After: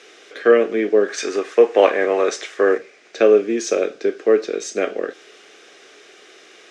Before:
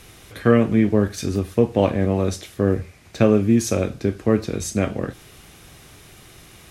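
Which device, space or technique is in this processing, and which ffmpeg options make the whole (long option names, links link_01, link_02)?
phone speaker on a table: -filter_complex "[0:a]asettb=1/sr,asplit=3[link_01][link_02][link_03];[link_01]atrim=end=1.084[link_04];[link_02]atrim=start=1.08:end=2.78,asetpts=PTS-STARTPTS,afade=type=in:duration=0.004:curve=qsin,afade=type=out:start_time=1.696:duration=0.004:curve=qsin,equalizer=frequency=125:width_type=o:width=1:gain=-9,equalizer=frequency=1000:width_type=o:width=1:gain=9,equalizer=frequency=2000:width_type=o:width=1:gain=7,equalizer=frequency=8000:width_type=o:width=1:gain=6[link_05];[link_03]atrim=start=2.776[link_06];[link_04][link_05]acrossfade=duration=0.004:curve1=hsin:curve2=qsin[link_07];[link_07][link_06]acrossfade=duration=0.004:curve1=qsin:curve2=hsin,highpass=frequency=350:width=0.5412,highpass=frequency=350:width=1.3066,equalizer=frequency=430:width_type=q:width=4:gain=6,equalizer=frequency=940:width_type=q:width=4:gain=-10,equalizer=frequency=1600:width_type=q:width=4:gain=3,equalizer=frequency=4300:width_type=q:width=4:gain=-3,lowpass=frequency=6500:width=0.5412,lowpass=frequency=6500:width=1.3066,volume=3dB"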